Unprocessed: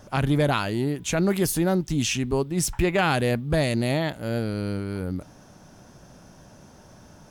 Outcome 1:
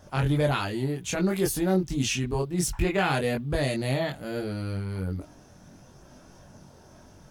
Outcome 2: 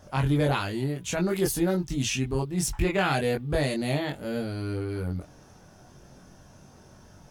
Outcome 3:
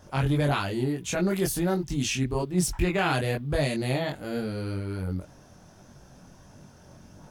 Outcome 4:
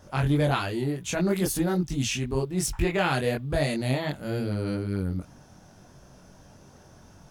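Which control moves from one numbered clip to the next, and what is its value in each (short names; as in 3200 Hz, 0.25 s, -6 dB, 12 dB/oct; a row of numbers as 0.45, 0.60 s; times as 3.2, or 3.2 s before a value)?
chorus, rate: 0.59, 0.25, 1.5, 2.4 Hz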